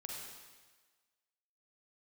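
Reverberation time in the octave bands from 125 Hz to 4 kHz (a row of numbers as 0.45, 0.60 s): 1.2, 1.2, 1.3, 1.4, 1.4, 1.4 s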